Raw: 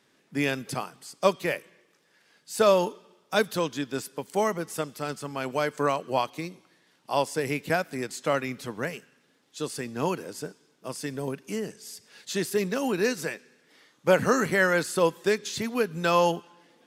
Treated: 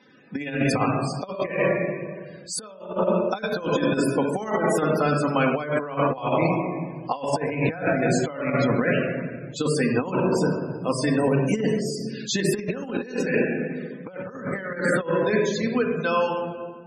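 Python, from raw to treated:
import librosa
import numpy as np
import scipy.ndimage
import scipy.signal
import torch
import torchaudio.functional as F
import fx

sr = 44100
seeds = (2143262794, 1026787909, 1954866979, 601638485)

y = fx.fade_out_tail(x, sr, length_s=3.4)
y = fx.room_shoebox(y, sr, seeds[0], volume_m3=2100.0, walls='mixed', distance_m=2.0)
y = fx.spec_topn(y, sr, count=64)
y = fx.low_shelf(y, sr, hz=110.0, db=-6.0, at=(3.63, 6.06))
y = fx.over_compress(y, sr, threshold_db=-29.0, ratio=-0.5)
y = fx.high_shelf(y, sr, hz=7600.0, db=-4.5)
y = y * librosa.db_to_amplitude(6.0)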